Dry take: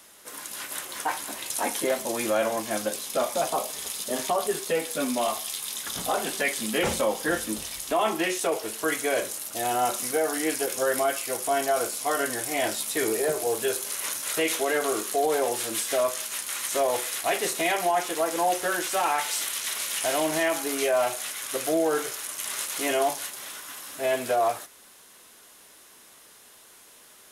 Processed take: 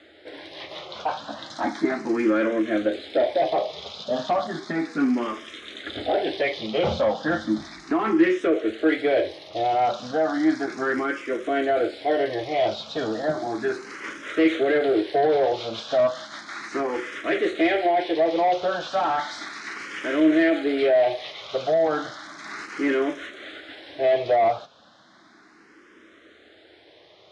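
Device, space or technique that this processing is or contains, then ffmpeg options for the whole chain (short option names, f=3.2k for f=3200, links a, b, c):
barber-pole phaser into a guitar amplifier: -filter_complex "[0:a]asplit=2[a][b];[b]afreqshift=0.34[c];[a][c]amix=inputs=2:normalize=1,asoftclip=type=tanh:threshold=-23.5dB,highpass=78,equalizer=f=83:t=q:w=4:g=6,equalizer=f=320:t=q:w=4:g=9,equalizer=f=620:t=q:w=4:g=3,equalizer=f=980:t=q:w=4:g=-7,equalizer=f=2.7k:t=q:w=4:g=-8,lowpass=f=3.8k:w=0.5412,lowpass=f=3.8k:w=1.3066,volume=7.5dB"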